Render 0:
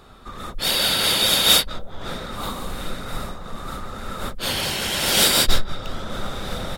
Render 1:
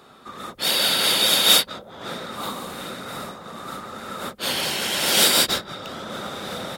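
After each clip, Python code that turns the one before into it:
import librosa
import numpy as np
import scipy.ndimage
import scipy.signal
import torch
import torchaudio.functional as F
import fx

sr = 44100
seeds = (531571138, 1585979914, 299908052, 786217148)

y = scipy.signal.sosfilt(scipy.signal.butter(2, 180.0, 'highpass', fs=sr, output='sos'), x)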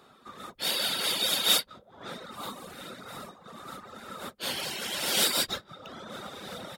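y = fx.dereverb_blind(x, sr, rt60_s=1.0)
y = y * 10.0 ** (-7.0 / 20.0)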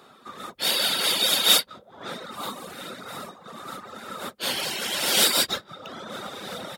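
y = fx.highpass(x, sr, hz=140.0, slope=6)
y = y * 10.0 ** (5.5 / 20.0)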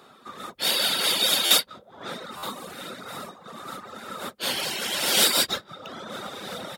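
y = fx.buffer_glitch(x, sr, at_s=(1.45, 2.37), block=512, repeats=4)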